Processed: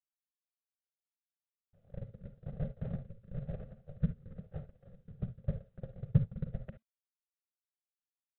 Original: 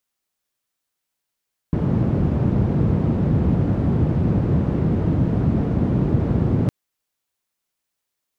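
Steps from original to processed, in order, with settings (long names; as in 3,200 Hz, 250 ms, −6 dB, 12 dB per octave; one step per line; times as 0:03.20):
notch filter 2,500 Hz, Q 8.9
noise gate −13 dBFS, range −55 dB
parametric band 770 Hz +12.5 dB 0.24 octaves
phaser with its sweep stopped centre 810 Hz, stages 8
rotating-speaker cabinet horn 1 Hz
frequency shifter −230 Hz
convolution reverb, pre-delay 33 ms, DRR 9.5 dB
level +11 dB
IMA ADPCM 32 kbit/s 8,000 Hz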